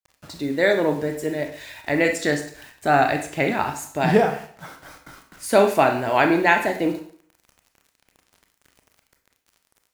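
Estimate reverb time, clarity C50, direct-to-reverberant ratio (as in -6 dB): 0.55 s, 9.0 dB, 4.5 dB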